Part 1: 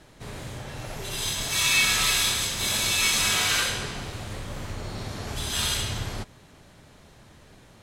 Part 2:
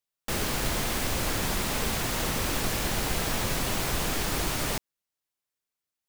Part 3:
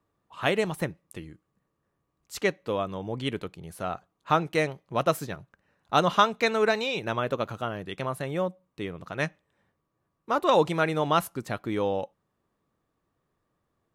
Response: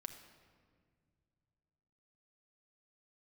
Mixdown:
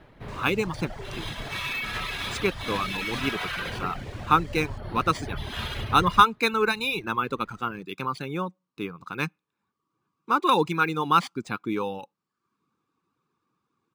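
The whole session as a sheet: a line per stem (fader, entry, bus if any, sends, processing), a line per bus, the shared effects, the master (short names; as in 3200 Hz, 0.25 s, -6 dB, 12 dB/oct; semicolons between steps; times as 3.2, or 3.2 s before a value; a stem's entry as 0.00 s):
+1.0 dB, 0.00 s, no send, LPF 2700 Hz 12 dB/oct; limiter -21 dBFS, peak gain reduction 7.5 dB
-19.0 dB, 0.00 s, no send, dry
+0.5 dB, 0.00 s, no send, HPF 190 Hz 12 dB/oct; comb 0.8 ms, depth 98%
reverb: off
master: reverb removal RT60 0.62 s; decimation joined by straight lines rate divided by 3×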